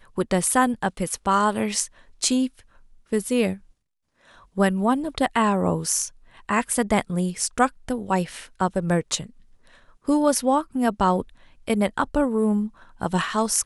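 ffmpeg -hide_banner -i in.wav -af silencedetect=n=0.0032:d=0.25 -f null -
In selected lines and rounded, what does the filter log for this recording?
silence_start: 3.71
silence_end: 4.21 | silence_duration: 0.51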